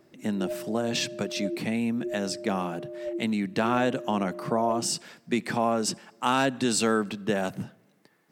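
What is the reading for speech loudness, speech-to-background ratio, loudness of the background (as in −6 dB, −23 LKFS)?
−28.0 LKFS, 9.5 dB, −37.5 LKFS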